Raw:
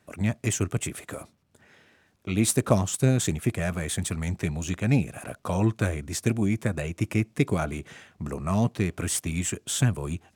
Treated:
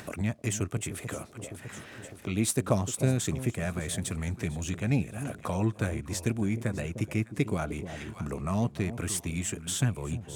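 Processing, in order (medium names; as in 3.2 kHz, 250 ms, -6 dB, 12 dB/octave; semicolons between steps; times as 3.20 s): echo whose repeats swap between lows and highs 303 ms, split 810 Hz, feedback 53%, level -12 dB; upward compressor, threshold -24 dBFS; trim -4.5 dB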